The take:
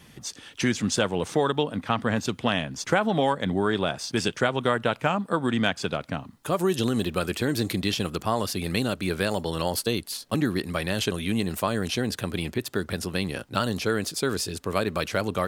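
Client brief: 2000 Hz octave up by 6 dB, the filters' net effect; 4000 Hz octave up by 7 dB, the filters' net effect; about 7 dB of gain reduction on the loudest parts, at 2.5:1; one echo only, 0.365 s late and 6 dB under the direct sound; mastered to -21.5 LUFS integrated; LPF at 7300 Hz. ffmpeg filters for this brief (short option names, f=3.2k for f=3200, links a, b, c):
-af "lowpass=7.3k,equalizer=f=2k:t=o:g=6.5,equalizer=f=4k:t=o:g=7,acompressor=threshold=-26dB:ratio=2.5,aecho=1:1:365:0.501,volume=6.5dB"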